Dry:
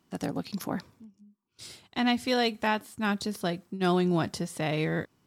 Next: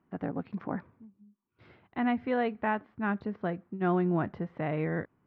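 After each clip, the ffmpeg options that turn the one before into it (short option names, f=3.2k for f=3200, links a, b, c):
-af "lowpass=f=2k:w=0.5412,lowpass=f=2k:w=1.3066,volume=-2dB"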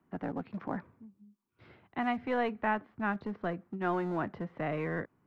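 -filter_complex "[0:a]acrossover=split=150|490|1500[a][b][c][d];[a]acompressor=threshold=-50dB:ratio=6[e];[b]asoftclip=type=hard:threshold=-35dB[f];[e][f][c][d]amix=inputs=4:normalize=0"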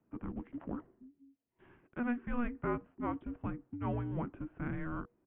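-af "aresample=8000,aresample=44100,afreqshift=-480,volume=-4dB"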